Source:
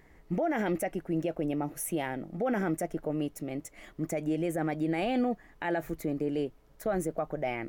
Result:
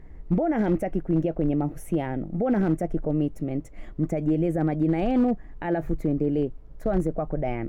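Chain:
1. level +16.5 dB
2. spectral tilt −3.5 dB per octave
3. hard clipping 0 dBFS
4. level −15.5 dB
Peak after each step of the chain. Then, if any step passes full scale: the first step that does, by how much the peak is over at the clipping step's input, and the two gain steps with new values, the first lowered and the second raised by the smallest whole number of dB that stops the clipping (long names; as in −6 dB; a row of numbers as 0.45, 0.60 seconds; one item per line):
−5.0, +3.5, 0.0, −15.5 dBFS
step 2, 3.5 dB
step 1 +12.5 dB, step 4 −11.5 dB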